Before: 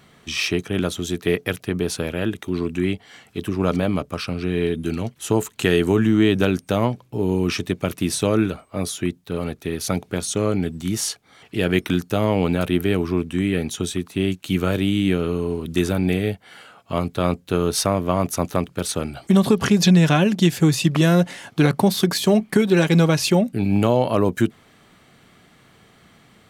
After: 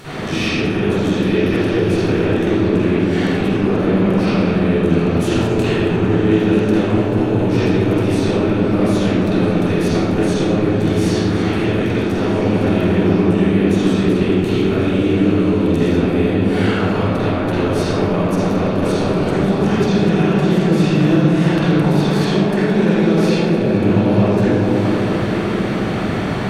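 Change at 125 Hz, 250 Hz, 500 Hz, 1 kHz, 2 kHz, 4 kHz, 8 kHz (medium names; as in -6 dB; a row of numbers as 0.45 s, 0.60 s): +5.5 dB, +6.0 dB, +5.5 dB, +5.0 dB, +4.0 dB, +0.5 dB, -7.0 dB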